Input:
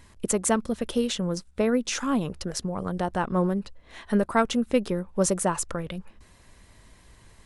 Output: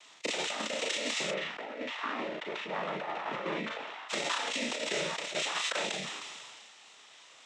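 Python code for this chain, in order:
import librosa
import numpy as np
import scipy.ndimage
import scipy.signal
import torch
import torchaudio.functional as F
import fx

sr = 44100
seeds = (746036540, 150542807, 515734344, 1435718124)

y = np.r_[np.sort(x[:len(x) // 16 * 16].reshape(-1, 16), axis=1).ravel(), x[len(x) // 16 * 16:]]
y = fx.noise_vocoder(y, sr, seeds[0], bands=12)
y = scipy.signal.sosfilt(scipy.signal.butter(2, 740.0, 'highpass', fs=sr, output='sos'), y)
y = fx.room_early_taps(y, sr, ms=(41, 54), db=(-9.5, -12.0))
y = fx.over_compress(y, sr, threshold_db=-35.0, ratio=-0.5)
y = fx.lowpass(y, sr, hz=1800.0, slope=12, at=(1.3, 4.08), fade=0.02)
y = fx.doubler(y, sr, ms=32.0, db=-11.5)
y = fx.sustainer(y, sr, db_per_s=25.0)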